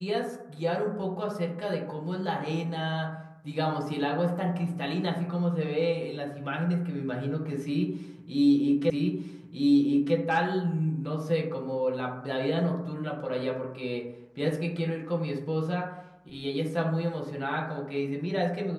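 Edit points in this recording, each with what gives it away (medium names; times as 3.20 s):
8.90 s: repeat of the last 1.25 s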